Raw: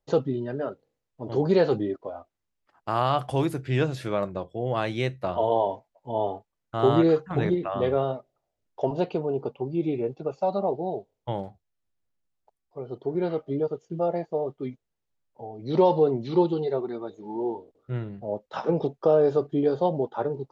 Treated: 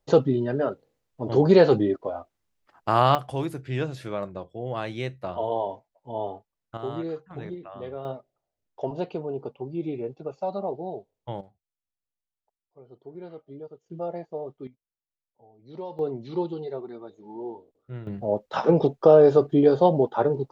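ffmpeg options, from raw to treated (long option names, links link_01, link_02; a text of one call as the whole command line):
ffmpeg -i in.wav -af "asetnsamples=nb_out_samples=441:pad=0,asendcmd='3.15 volume volume -4dB;6.77 volume volume -12dB;8.05 volume volume -4dB;11.41 volume volume -14dB;13.86 volume volume -6dB;14.67 volume volume -17dB;15.99 volume volume -6.5dB;18.07 volume volume 5.5dB',volume=5dB" out.wav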